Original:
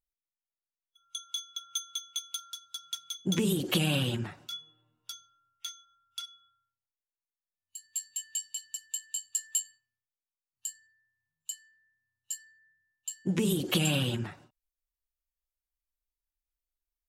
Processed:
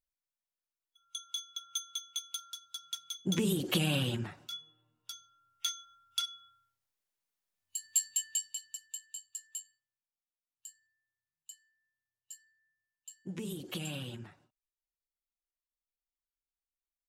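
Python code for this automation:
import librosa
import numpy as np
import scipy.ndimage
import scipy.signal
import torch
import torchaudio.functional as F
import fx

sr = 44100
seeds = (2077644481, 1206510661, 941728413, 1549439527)

y = fx.gain(x, sr, db=fx.line((5.12, -2.5), (5.7, 6.0), (8.05, 6.0), (8.59, -3.0), (9.43, -12.0)))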